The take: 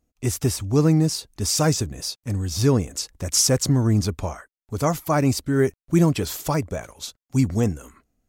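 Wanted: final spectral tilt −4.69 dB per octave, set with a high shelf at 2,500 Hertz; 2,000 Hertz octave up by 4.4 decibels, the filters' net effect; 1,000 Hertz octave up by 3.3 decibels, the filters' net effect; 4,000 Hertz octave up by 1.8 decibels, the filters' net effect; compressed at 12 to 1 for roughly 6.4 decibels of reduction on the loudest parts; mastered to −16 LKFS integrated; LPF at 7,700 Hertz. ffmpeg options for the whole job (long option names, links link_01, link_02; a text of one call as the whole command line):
ffmpeg -i in.wav -af "lowpass=7700,equalizer=frequency=1000:width_type=o:gain=3.5,equalizer=frequency=2000:width_type=o:gain=5,highshelf=frequency=2500:gain=-5,equalizer=frequency=4000:width_type=o:gain=8,acompressor=threshold=-19dB:ratio=12,volume=10dB" out.wav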